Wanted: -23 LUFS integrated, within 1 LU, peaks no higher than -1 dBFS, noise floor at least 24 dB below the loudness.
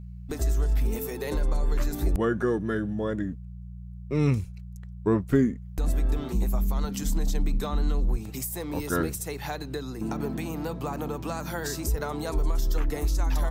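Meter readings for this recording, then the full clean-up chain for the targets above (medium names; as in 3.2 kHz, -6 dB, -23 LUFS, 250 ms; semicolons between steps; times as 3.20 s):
hum 60 Hz; highest harmonic 180 Hz; hum level -38 dBFS; loudness -29.0 LUFS; peak level -9.5 dBFS; loudness target -23.0 LUFS
-> de-hum 60 Hz, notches 3; trim +6 dB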